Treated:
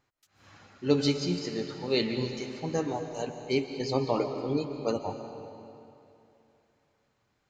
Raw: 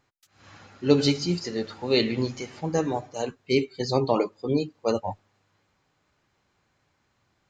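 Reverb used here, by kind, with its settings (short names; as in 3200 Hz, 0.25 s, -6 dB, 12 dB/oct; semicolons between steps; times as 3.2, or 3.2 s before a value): digital reverb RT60 2.8 s, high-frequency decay 0.85×, pre-delay 0.1 s, DRR 7 dB; gain -5 dB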